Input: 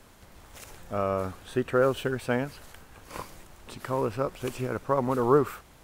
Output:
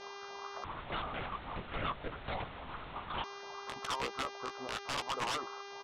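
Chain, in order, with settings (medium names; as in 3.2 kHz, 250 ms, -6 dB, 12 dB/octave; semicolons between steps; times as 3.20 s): low-pass that closes with the level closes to 880 Hz, closed at -24.5 dBFS; harmonic-percussive split harmonic -16 dB; resonant high shelf 1.7 kHz -13 dB, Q 3; compression 2:1, threshold -44 dBFS, peak gain reduction 13 dB; waveshaping leveller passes 1; LFO band-pass saw up 3.5 Hz 730–1600 Hz; mains buzz 400 Hz, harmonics 16, -59 dBFS -3 dB/octave; integer overflow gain 37 dB; distance through air 84 m; doubling 15 ms -8 dB; 0.64–3.24 s: LPC vocoder at 8 kHz whisper; trim +9 dB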